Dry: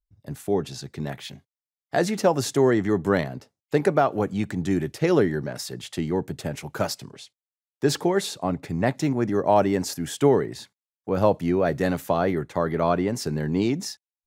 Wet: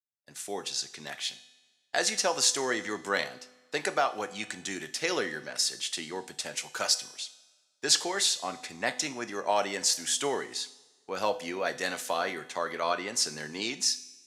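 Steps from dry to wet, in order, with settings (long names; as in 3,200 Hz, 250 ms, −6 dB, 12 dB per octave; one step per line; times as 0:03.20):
meter weighting curve ITU-R 468
downward expander −40 dBFS
low-shelf EQ 69 Hz −8.5 dB
tuned comb filter 250 Hz, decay 1.1 s, mix 60%
coupled-rooms reverb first 0.4 s, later 1.7 s, from −19 dB, DRR 10 dB
level +3 dB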